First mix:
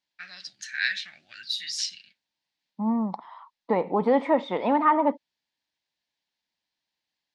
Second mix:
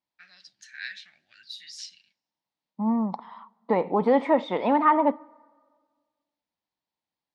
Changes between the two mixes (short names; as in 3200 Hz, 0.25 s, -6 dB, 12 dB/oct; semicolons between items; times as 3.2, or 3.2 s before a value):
first voice -11.0 dB; reverb: on, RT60 1.7 s